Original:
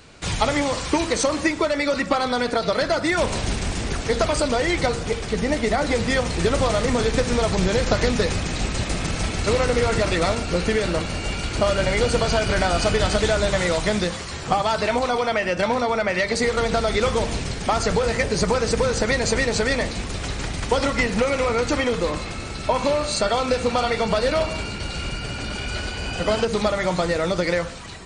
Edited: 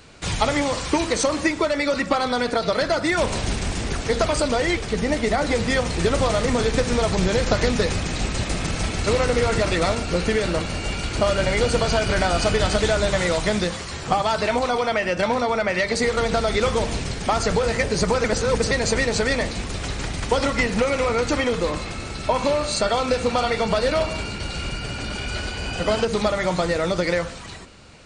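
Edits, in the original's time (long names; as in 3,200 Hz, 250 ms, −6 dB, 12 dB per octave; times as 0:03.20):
0:04.77–0:05.17: remove
0:18.64–0:19.11: reverse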